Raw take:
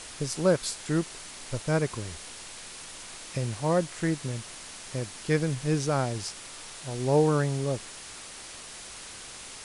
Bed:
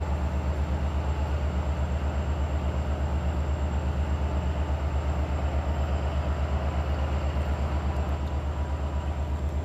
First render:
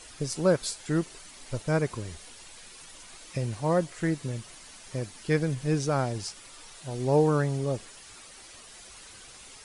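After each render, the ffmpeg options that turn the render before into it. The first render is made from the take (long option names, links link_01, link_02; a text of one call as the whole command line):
ffmpeg -i in.wav -af "afftdn=noise_reduction=9:noise_floor=-44" out.wav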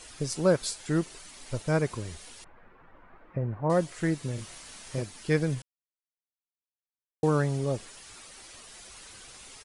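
ffmpeg -i in.wav -filter_complex "[0:a]asettb=1/sr,asplit=3[link_01][link_02][link_03];[link_01]atrim=end=2.444[link_04];[link_02]atrim=start=2.44:end=3.7,asetpts=PTS-STARTPTS,afade=type=in:duration=0.004:curve=qsin,afade=type=out:start_time=1.256:duration=0.004:curve=qsin,lowpass=frequency=1600:width=0.5412,lowpass=frequency=1600:width=1.3066[link_05];[link_03]atrim=start=3.696[link_06];[link_04][link_05]acrossfade=duration=0.004:curve1=hsin:curve2=qsin[link_07];[link_07][link_06]acrossfade=duration=0.004:curve1=qsin:curve2=hsin,asplit=3[link_08][link_09][link_10];[link_08]afade=type=out:start_time=4.37:duration=0.02[link_11];[link_09]asplit=2[link_12][link_13];[link_13]adelay=29,volume=-2.5dB[link_14];[link_12][link_14]amix=inputs=2:normalize=0,afade=type=in:start_time=4.37:duration=0.02,afade=type=out:start_time=5.01:duration=0.02[link_15];[link_10]afade=type=in:start_time=5.01:duration=0.02[link_16];[link_11][link_15][link_16]amix=inputs=3:normalize=0,asplit=3[link_17][link_18][link_19];[link_17]atrim=end=5.62,asetpts=PTS-STARTPTS,afade=type=out:start_time=5.616:duration=0.004:curve=hsin[link_20];[link_18]atrim=start=5.62:end=7.23,asetpts=PTS-STARTPTS,volume=0[link_21];[link_19]atrim=start=7.23,asetpts=PTS-STARTPTS,afade=type=in:duration=0.004:curve=hsin[link_22];[link_20][link_21][link_22]concat=n=3:v=0:a=1" out.wav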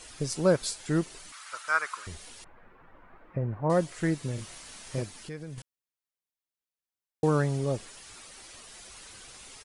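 ffmpeg -i in.wav -filter_complex "[0:a]asettb=1/sr,asplit=3[link_01][link_02][link_03];[link_01]atrim=end=1.324[link_04];[link_02]atrim=start=1.32:end=2.07,asetpts=PTS-STARTPTS,afade=type=in:duration=0.004:curve=qsin,afade=type=out:start_time=0.746:duration=0.004:curve=qsin,highpass=frequency=1300:width_type=q:width=5.4[link_05];[link_03]atrim=start=2.066[link_06];[link_04][link_05]acrossfade=duration=0.004:curve1=hsin:curve2=qsin[link_07];[link_07][link_06]acrossfade=duration=0.004:curve1=qsin:curve2=hsin,asettb=1/sr,asplit=3[link_08][link_09][link_10];[link_08]atrim=end=5.184[link_11];[link_09]atrim=start=5.18:end=5.58,asetpts=PTS-STARTPTS,afade=type=in:duration=0.004:curve=qsin,afade=type=out:start_time=0.396:duration=0.004:curve=qsin,acompressor=threshold=-43dB:ratio=2.5:attack=3.2:release=140:knee=1:detection=peak[link_12];[link_10]atrim=start=5.576[link_13];[link_11][link_12]acrossfade=duration=0.004:curve1=hsin:curve2=qsin[link_14];[link_14][link_13]acrossfade=duration=0.004:curve1=qsin:curve2=hsin" out.wav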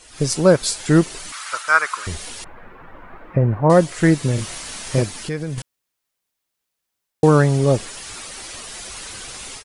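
ffmpeg -i in.wav -af "dynaudnorm=framelen=110:gausssize=3:maxgain=14dB" out.wav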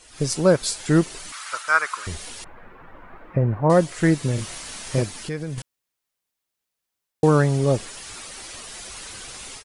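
ffmpeg -i in.wav -af "volume=-3.5dB" out.wav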